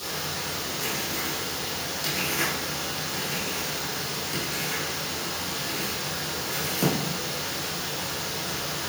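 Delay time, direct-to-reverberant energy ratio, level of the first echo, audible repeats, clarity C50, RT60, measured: no echo, -12.0 dB, no echo, no echo, 1.0 dB, 0.85 s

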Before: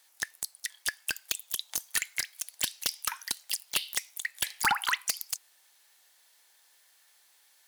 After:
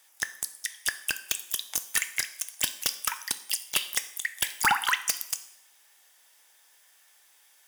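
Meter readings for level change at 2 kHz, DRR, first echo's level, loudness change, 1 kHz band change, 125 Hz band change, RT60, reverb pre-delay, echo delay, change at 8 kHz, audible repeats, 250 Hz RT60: +3.5 dB, 10.5 dB, no echo, +3.0 dB, +3.5 dB, +3.0 dB, 0.75 s, 5 ms, no echo, +3.5 dB, no echo, 0.70 s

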